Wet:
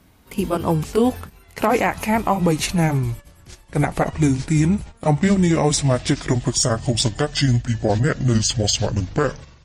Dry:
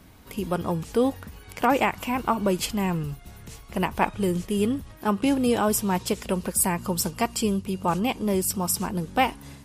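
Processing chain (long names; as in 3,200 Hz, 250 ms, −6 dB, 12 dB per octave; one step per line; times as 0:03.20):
pitch glide at a constant tempo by −10.5 semitones starting unshifted
noise gate −40 dBFS, range −11 dB
harmonic generator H 3 −23 dB, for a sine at −9 dBFS
boost into a limiter +17 dB
level −6.5 dB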